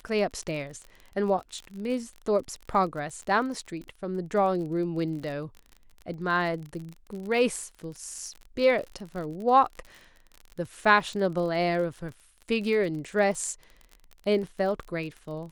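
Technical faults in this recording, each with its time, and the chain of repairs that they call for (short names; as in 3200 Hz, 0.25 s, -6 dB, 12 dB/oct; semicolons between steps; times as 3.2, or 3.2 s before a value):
crackle 39/s -35 dBFS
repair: de-click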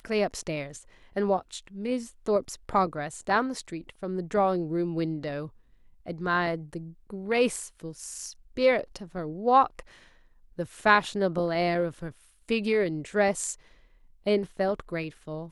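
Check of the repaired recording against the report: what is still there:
none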